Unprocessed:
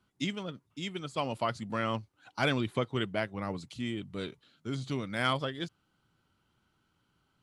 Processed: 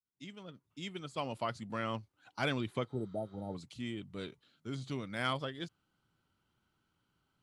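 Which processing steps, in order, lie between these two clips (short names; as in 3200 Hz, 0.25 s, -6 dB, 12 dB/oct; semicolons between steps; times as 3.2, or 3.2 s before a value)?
opening faded in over 0.86 s; spectral repair 2.92–3.52, 920–7900 Hz before; gain -5 dB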